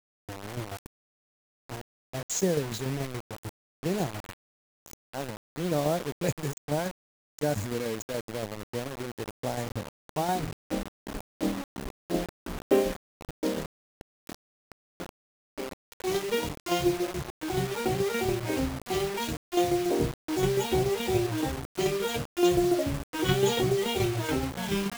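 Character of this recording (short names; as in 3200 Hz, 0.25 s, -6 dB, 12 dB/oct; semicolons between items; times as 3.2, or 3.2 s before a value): tremolo saw down 7 Hz, depth 55%; a quantiser's noise floor 6-bit, dither none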